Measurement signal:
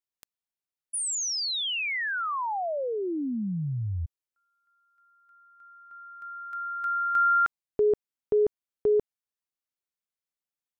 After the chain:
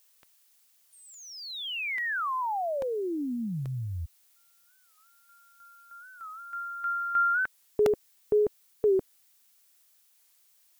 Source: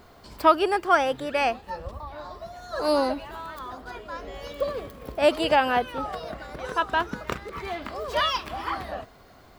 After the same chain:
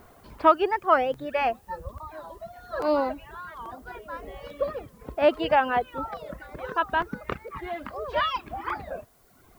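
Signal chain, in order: reverb removal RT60 1.2 s; LPF 2500 Hz 12 dB/oct; added noise blue -64 dBFS; crackling interface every 0.84 s, samples 64, repeat, from 0.3; record warp 45 rpm, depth 160 cents

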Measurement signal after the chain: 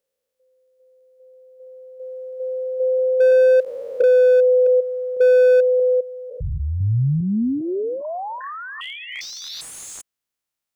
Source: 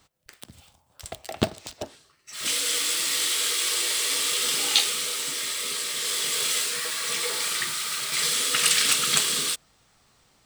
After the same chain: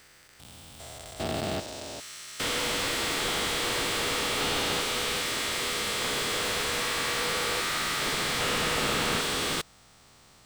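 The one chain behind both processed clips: stepped spectrum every 0.4 s; slew limiter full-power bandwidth 63 Hz; gain +7 dB

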